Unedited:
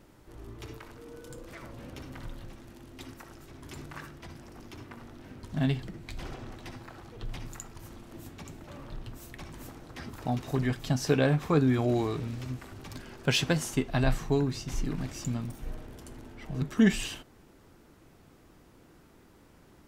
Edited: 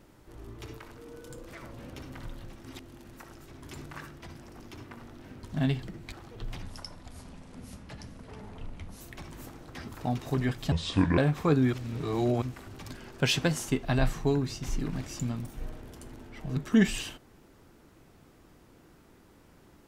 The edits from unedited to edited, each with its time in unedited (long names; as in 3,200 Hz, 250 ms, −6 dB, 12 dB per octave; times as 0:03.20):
0:02.62–0:03.16: reverse
0:06.12–0:06.93: remove
0:07.43–0:09.22: play speed 75%
0:10.93–0:11.23: play speed 65%
0:11.78–0:12.47: reverse